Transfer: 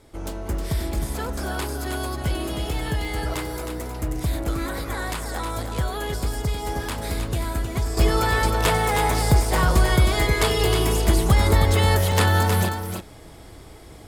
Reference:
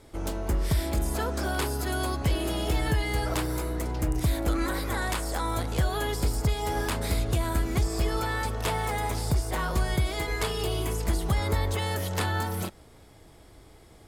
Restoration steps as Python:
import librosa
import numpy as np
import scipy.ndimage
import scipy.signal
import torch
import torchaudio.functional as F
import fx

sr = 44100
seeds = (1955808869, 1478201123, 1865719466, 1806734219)

y = fx.fix_interpolate(x, sr, at_s=(1.37, 3.05, 6.83, 7.28, 12.12), length_ms=2.3)
y = fx.fix_echo_inverse(y, sr, delay_ms=314, level_db=-6.5)
y = fx.fix_level(y, sr, at_s=7.97, step_db=-8.0)